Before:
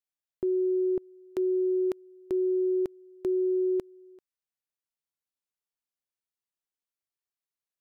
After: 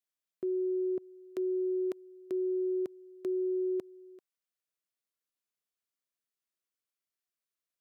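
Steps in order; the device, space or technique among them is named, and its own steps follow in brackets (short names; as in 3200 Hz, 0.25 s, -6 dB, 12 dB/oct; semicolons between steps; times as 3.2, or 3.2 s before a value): PA system with an anti-feedback notch (HPF 160 Hz; Butterworth band-stop 860 Hz, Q 4.2; limiter -28 dBFS, peak gain reduction 5.5 dB)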